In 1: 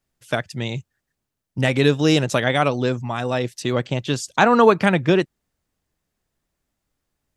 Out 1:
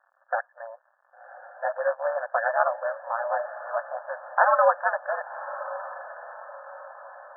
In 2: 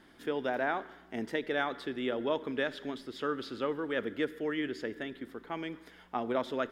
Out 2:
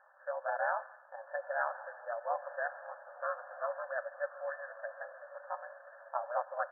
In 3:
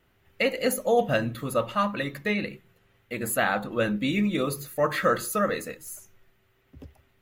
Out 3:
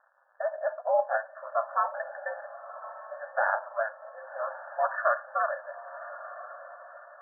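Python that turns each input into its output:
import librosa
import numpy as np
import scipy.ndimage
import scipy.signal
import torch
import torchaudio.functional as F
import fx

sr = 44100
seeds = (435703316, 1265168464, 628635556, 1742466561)

p1 = fx.dmg_crackle(x, sr, seeds[0], per_s=330.0, level_db=-41.0)
p2 = p1 * np.sin(2.0 * np.pi * 110.0 * np.arange(len(p1)) / sr)
p3 = (np.mod(10.0 ** (13.0 / 20.0) * p2 + 1.0, 2.0) - 1.0) / 10.0 ** (13.0 / 20.0)
p4 = p2 + (p3 * 10.0 ** (-10.0 / 20.0))
p5 = fx.brickwall_bandpass(p4, sr, low_hz=520.0, high_hz=1800.0)
y = fx.echo_diffused(p5, sr, ms=1092, feedback_pct=46, wet_db=-13.5)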